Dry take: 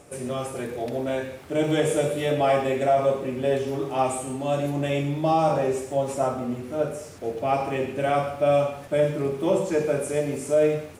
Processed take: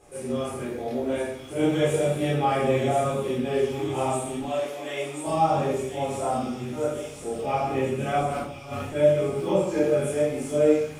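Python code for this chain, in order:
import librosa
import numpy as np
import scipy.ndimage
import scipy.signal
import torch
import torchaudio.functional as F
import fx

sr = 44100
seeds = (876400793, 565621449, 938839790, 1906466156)

y = fx.highpass(x, sr, hz=420.0, slope=12, at=(4.4, 5.27))
y = fx.over_compress(y, sr, threshold_db=-33.0, ratio=-1.0, at=(8.18, 8.82))
y = fx.chorus_voices(y, sr, voices=2, hz=0.9, base_ms=28, depth_ms=2.3, mix_pct=55)
y = fx.echo_wet_highpass(y, sr, ms=1036, feedback_pct=63, hz=3000.0, wet_db=-3.5)
y = fx.room_shoebox(y, sr, seeds[0], volume_m3=330.0, walls='furnished', distance_m=3.9)
y = y * librosa.db_to_amplitude(-5.0)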